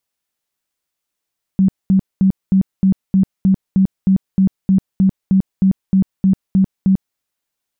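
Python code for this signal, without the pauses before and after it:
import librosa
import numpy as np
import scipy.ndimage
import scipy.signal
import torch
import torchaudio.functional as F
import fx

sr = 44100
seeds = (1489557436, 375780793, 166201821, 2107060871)

y = fx.tone_burst(sr, hz=191.0, cycles=18, every_s=0.31, bursts=18, level_db=-8.5)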